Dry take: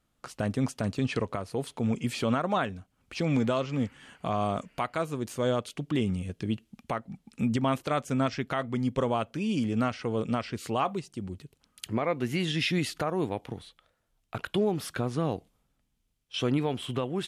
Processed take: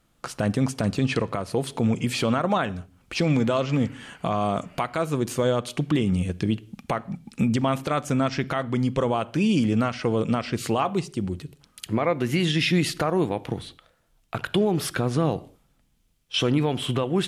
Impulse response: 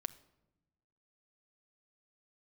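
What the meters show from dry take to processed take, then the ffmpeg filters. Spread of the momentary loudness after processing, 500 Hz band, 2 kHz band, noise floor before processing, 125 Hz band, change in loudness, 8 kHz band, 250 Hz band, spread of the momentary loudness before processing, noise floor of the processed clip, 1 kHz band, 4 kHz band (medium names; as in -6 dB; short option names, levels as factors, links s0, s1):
9 LU, +5.0 dB, +5.5 dB, -75 dBFS, +6.5 dB, +5.5 dB, +7.5 dB, +5.5 dB, 10 LU, -65 dBFS, +4.0 dB, +6.5 dB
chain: -filter_complex "[0:a]alimiter=limit=0.075:level=0:latency=1:release=164,asplit=2[s0][s1];[1:a]atrim=start_sample=2205,afade=t=out:st=0.25:d=0.01,atrim=end_sample=11466[s2];[s1][s2]afir=irnorm=-1:irlink=0,volume=2.24[s3];[s0][s3]amix=inputs=2:normalize=0"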